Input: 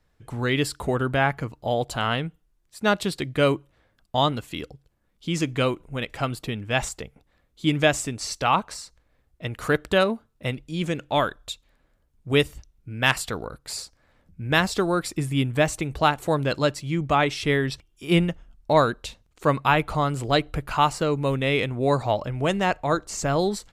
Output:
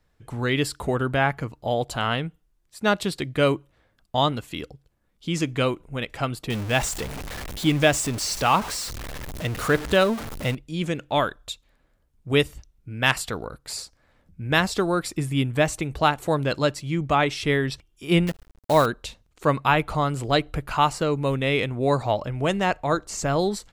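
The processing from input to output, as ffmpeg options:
ffmpeg -i in.wav -filter_complex "[0:a]asettb=1/sr,asplit=3[link_01][link_02][link_03];[link_01]atrim=end=6.504[link_04];[link_02]atrim=start=6.5:end=10.55,asetpts=PTS-STARTPTS,afade=type=in:duration=0.004:curve=qsin,afade=type=out:start_time=4.046:duration=0.004:curve=qsin,aeval=exprs='val(0)+0.5*0.0398*sgn(val(0))':channel_layout=same[link_05];[link_03]atrim=start=10.546[link_06];[link_04][link_05]acrossfade=duration=0.004:curve1=hsin:curve2=qsin[link_07];[link_07][link_06]acrossfade=duration=0.004:curve1=qsin:curve2=hsin,asettb=1/sr,asplit=3[link_08][link_09][link_10];[link_08]atrim=end=18.274[link_11];[link_09]atrim=start=18.27:end=18.86,asetpts=PTS-STARTPTS,afade=type=in:duration=0.004:curve=qsin,afade=type=out:start_time=0.586:duration=0.004:curve=qsin,acrusher=bits=6:dc=4:mix=0:aa=0.000001[link_12];[link_10]atrim=start=18.856[link_13];[link_11][link_12]acrossfade=duration=0.004:curve1=hsin:curve2=qsin[link_14];[link_14][link_13]acrossfade=duration=0.004:curve1=qsin:curve2=hsin" out.wav

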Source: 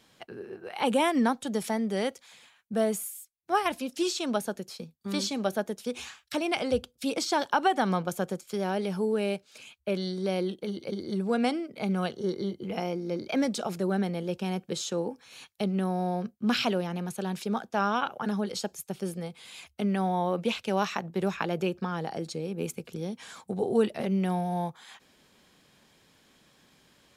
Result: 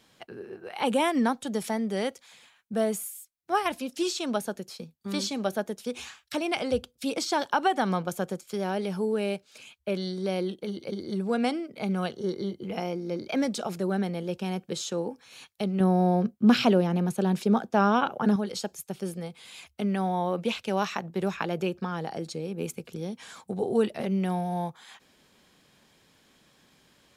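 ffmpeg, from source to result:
ffmpeg -i in.wav -filter_complex "[0:a]asettb=1/sr,asplit=3[link_01][link_02][link_03];[link_01]atrim=end=15.804[link_04];[link_02]atrim=start=15.8:end=18.36,asetpts=PTS-STARTPTS,afade=type=in:duration=0.004:curve=qsin,afade=type=out:start_time=2.556:duration=0.004:curve=qsin,equalizer=frequency=240:width=0.31:gain=8[link_05];[link_03]atrim=start=18.356[link_06];[link_04][link_05]acrossfade=duration=0.004:curve1=hsin:curve2=qsin[link_07];[link_07][link_06]acrossfade=duration=0.004:curve1=qsin:curve2=hsin" out.wav

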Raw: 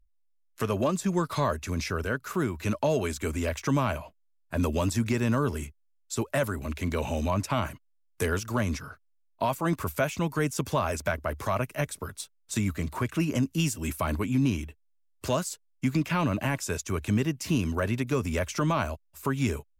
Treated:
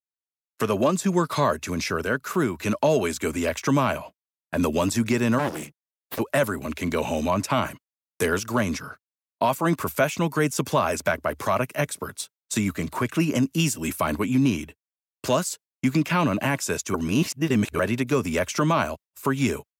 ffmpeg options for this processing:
ffmpeg -i in.wav -filter_complex "[0:a]asplit=3[link_01][link_02][link_03];[link_01]afade=type=out:start_time=5.38:duration=0.02[link_04];[link_02]aeval=exprs='abs(val(0))':channel_layout=same,afade=type=in:start_time=5.38:duration=0.02,afade=type=out:start_time=6.18:duration=0.02[link_05];[link_03]afade=type=in:start_time=6.18:duration=0.02[link_06];[link_04][link_05][link_06]amix=inputs=3:normalize=0,asplit=3[link_07][link_08][link_09];[link_07]atrim=end=16.942[link_10];[link_08]atrim=start=16.938:end=17.792,asetpts=PTS-STARTPTS,areverse[link_11];[link_09]atrim=start=17.788[link_12];[link_10][link_11]acrossfade=duration=0.004:curve1=hsin:curve2=hsin[link_13];[link_13][link_12]acrossfade=duration=0.004:curve1=hsin:curve2=hsin,highpass=150,agate=range=-33dB:threshold=-44dB:ratio=3:detection=peak,volume=5.5dB" out.wav

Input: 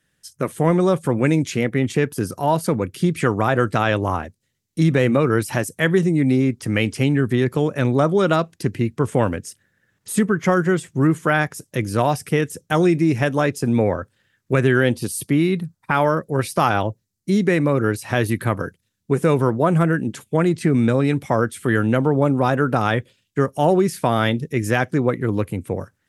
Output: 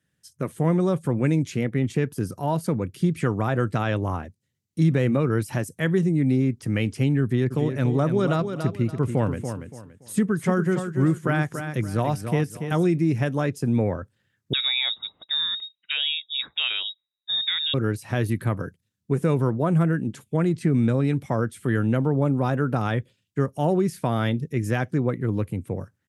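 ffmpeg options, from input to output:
ffmpeg -i in.wav -filter_complex "[0:a]asplit=3[link_01][link_02][link_03];[link_01]afade=type=out:start_time=7.5:duration=0.02[link_04];[link_02]aecho=1:1:285|570|855:0.398|0.111|0.0312,afade=type=in:start_time=7.5:duration=0.02,afade=type=out:start_time=12.84:duration=0.02[link_05];[link_03]afade=type=in:start_time=12.84:duration=0.02[link_06];[link_04][link_05][link_06]amix=inputs=3:normalize=0,asettb=1/sr,asplit=3[link_07][link_08][link_09];[link_07]atrim=end=14.534[link_10];[link_08]atrim=start=14.53:end=17.74,asetpts=PTS-STARTPTS,afade=type=in:duration=0.004:curve=qsin,afade=type=out:start_time=3.206:duration=0.004:curve=qsin,lowpass=frequency=3300:width_type=q:width=0.5098,lowpass=frequency=3300:width_type=q:width=0.6013,lowpass=frequency=3300:width_type=q:width=0.9,lowpass=frequency=3300:width_type=q:width=2.563,afreqshift=-3900[link_11];[link_09]atrim=start=17.736[link_12];[link_10][link_11]acrossfade=duration=0.004:curve1=hsin:curve2=qsin[link_13];[link_13][link_12]acrossfade=duration=0.004:curve1=qsin:curve2=hsin,highpass=90,lowshelf=frequency=210:gain=11,volume=-8.5dB" out.wav

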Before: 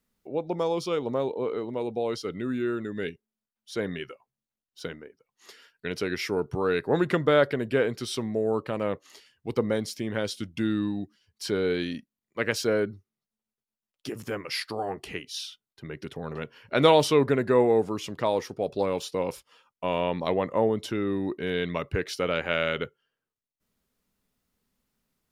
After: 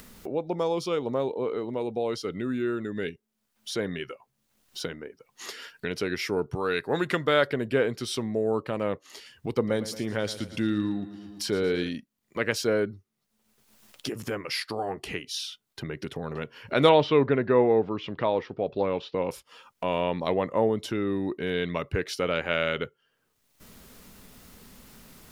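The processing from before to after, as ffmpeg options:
ffmpeg -i in.wav -filter_complex "[0:a]asettb=1/sr,asplit=3[link_01][link_02][link_03];[link_01]atrim=end=6.564[link_04];[link_02]atrim=start=6.56:end=7.5,asetpts=PTS-STARTPTS,afade=type=in:duration=0.004:curve=qsin,afade=type=out:start_time=0.936:duration=0.004:curve=qsin,tiltshelf=frequency=1100:gain=-4.5[link_05];[link_03]atrim=start=7.496[link_06];[link_04][link_05]acrossfade=duration=0.004:curve1=hsin:curve2=qsin[link_07];[link_07][link_06]acrossfade=duration=0.004:curve1=qsin:curve2=hsin,asettb=1/sr,asplit=3[link_08][link_09][link_10];[link_08]atrim=end=9.554[link_11];[link_09]atrim=start=9.55:end=11.89,asetpts=PTS-STARTPTS,afade=type=in:duration=0.004:curve=qsin,afade=type=out:start_time=2.336:duration=0.004:curve=qsin,aecho=1:1:113|226|339|452|565:0.188|0.0998|0.0529|0.028|0.0149,atrim=end_sample=103194[link_12];[link_10]atrim=start=11.886[link_13];[link_11][link_12]acrossfade=duration=0.004:curve1=hsin:curve2=qsin[link_14];[link_14][link_13]acrossfade=duration=0.004:curve1=qsin:curve2=hsin,asettb=1/sr,asplit=3[link_15][link_16][link_17];[link_15]atrim=end=16.894[link_18];[link_16]atrim=start=16.89:end=19.31,asetpts=PTS-STARTPTS,afade=type=in:duration=0.004:curve=qsin,afade=type=out:start_time=2.416:duration=0.004:curve=qsin,lowpass=frequency=3600:width=0.5412,lowpass=frequency=3600:width=1.3066[link_19];[link_17]atrim=start=19.306[link_20];[link_18][link_19]acrossfade=duration=0.004:curve1=hsin:curve2=qsin[link_21];[link_21][link_20]acrossfade=duration=0.004:curve1=qsin:curve2=hsin,acompressor=mode=upward:threshold=-28dB:ratio=2.5" out.wav

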